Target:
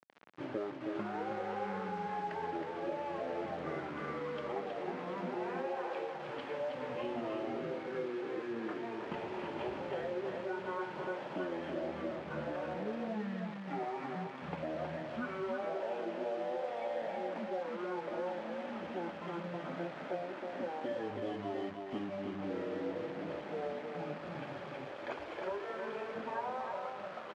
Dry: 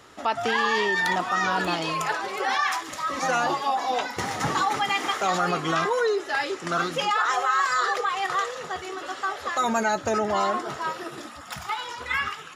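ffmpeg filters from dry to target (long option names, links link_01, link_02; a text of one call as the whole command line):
ffmpeg -i in.wav -filter_complex "[0:a]acompressor=threshold=-34dB:ratio=6,asetrate=20242,aresample=44100,acrusher=bits=6:mix=0:aa=0.000001,highpass=180,lowpass=2100,asplit=2[link_01][link_02];[link_02]aecho=0:1:318:0.562[link_03];[link_01][link_03]amix=inputs=2:normalize=0,volume=-3dB" out.wav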